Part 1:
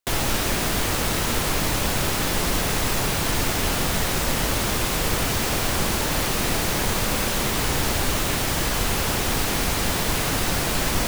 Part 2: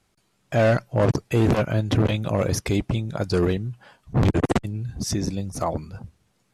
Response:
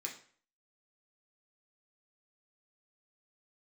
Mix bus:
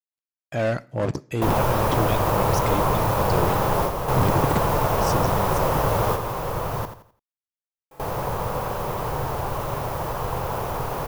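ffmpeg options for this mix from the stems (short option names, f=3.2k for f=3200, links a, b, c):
-filter_complex "[0:a]equalizer=f=125:t=o:w=1:g=10,equalizer=f=250:t=o:w=1:g=-7,equalizer=f=500:t=o:w=1:g=9,equalizer=f=1k:t=o:w=1:g=11,equalizer=f=2k:t=o:w=1:g=-6,equalizer=f=4k:t=o:w=1:g=-7,equalizer=f=8k:t=o:w=1:g=-10,adelay=1350,volume=-3.5dB,asplit=3[a][b][c];[a]atrim=end=6.77,asetpts=PTS-STARTPTS,afade=t=out:st=6.766:d=0.004:c=hsin[d];[b]atrim=start=6.77:end=7.91,asetpts=PTS-STARTPTS,volume=0[e];[c]atrim=start=7.91,asetpts=PTS-STARTPTS,afade=t=in:d=0.004:c=hsin[f];[d][e][f]concat=n=3:v=0:a=1,asplit=3[g][h][i];[h]volume=-23.5dB[j];[i]volume=-5dB[k];[1:a]aeval=exprs='sgn(val(0))*max(abs(val(0))-0.0015,0)':c=same,volume=-5.5dB,asplit=3[l][m][n];[m]volume=-11dB[o];[n]apad=whole_len=548095[p];[g][p]sidechaingate=range=-33dB:threshold=-53dB:ratio=16:detection=peak[q];[2:a]atrim=start_sample=2205[r];[j][o]amix=inputs=2:normalize=0[s];[s][r]afir=irnorm=-1:irlink=0[t];[k]aecho=0:1:85|170|255|340|425:1|0.32|0.102|0.0328|0.0105[u];[q][l][t][u]amix=inputs=4:normalize=0"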